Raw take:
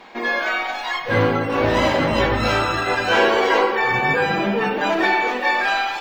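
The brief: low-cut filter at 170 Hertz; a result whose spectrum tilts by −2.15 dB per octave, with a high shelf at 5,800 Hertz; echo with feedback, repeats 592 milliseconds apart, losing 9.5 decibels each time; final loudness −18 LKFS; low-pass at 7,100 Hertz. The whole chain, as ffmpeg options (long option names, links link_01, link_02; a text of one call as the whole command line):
ffmpeg -i in.wav -af "highpass=170,lowpass=7100,highshelf=frequency=5800:gain=-8.5,aecho=1:1:592|1184|1776|2368:0.335|0.111|0.0365|0.012,volume=1dB" out.wav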